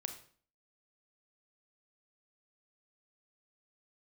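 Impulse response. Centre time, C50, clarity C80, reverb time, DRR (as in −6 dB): 13 ms, 10.0 dB, 13.5 dB, 0.50 s, 6.0 dB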